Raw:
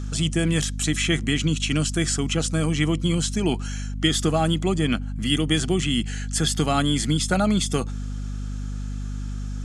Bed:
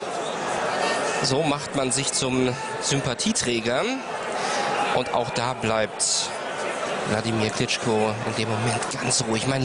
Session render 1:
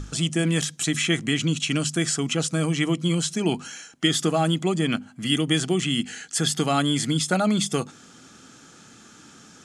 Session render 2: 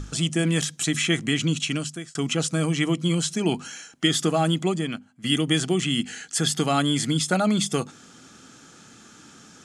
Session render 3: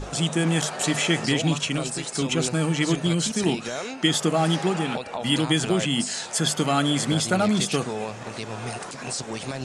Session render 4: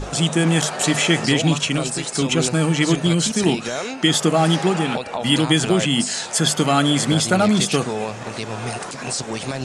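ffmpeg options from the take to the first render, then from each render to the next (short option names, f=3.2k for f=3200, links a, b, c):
-af "bandreject=f=50:t=h:w=6,bandreject=f=100:t=h:w=6,bandreject=f=150:t=h:w=6,bandreject=f=200:t=h:w=6,bandreject=f=250:t=h:w=6"
-filter_complex "[0:a]asplit=3[a][b][c];[a]atrim=end=2.15,asetpts=PTS-STARTPTS,afade=t=out:st=1.6:d=0.55[d];[b]atrim=start=2.15:end=5.24,asetpts=PTS-STARTPTS,afade=t=in:d=0.004:c=hsin,afade=t=out:st=2.53:d=0.56:c=qua:silence=0.211349[e];[c]atrim=start=5.24,asetpts=PTS-STARTPTS,afade=t=in:d=0.004:c=hsin:silence=0.211349[f];[d][e][f]concat=n=3:v=0:a=1"
-filter_complex "[1:a]volume=-8.5dB[a];[0:a][a]amix=inputs=2:normalize=0"
-af "volume=5dB,alimiter=limit=-3dB:level=0:latency=1"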